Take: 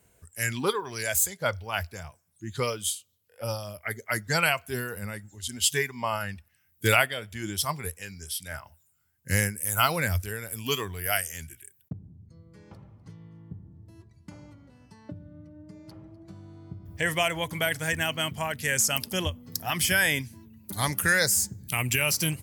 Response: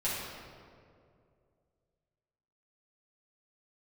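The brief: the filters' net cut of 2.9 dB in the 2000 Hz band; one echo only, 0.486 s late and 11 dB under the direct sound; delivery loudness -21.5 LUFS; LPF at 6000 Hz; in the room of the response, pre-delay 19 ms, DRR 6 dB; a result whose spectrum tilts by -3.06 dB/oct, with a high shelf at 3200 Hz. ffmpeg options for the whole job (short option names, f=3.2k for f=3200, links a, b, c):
-filter_complex "[0:a]lowpass=6k,equalizer=f=2k:t=o:g=-5.5,highshelf=f=3.2k:g=5.5,aecho=1:1:486:0.282,asplit=2[a][b];[1:a]atrim=start_sample=2205,adelay=19[c];[b][c]afir=irnorm=-1:irlink=0,volume=-13dB[d];[a][d]amix=inputs=2:normalize=0,volume=6.5dB"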